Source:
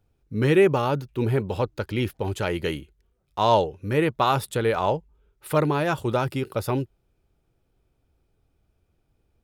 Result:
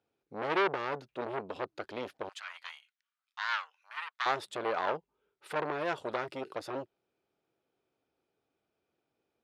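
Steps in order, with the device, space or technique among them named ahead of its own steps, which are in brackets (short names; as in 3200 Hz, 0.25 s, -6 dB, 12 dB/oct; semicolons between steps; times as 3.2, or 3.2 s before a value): public-address speaker with an overloaded transformer (core saturation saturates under 1900 Hz; BPF 310–5400 Hz); 2.29–4.26 inverse Chebyshev high-pass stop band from 350 Hz, stop band 60 dB; gain -4.5 dB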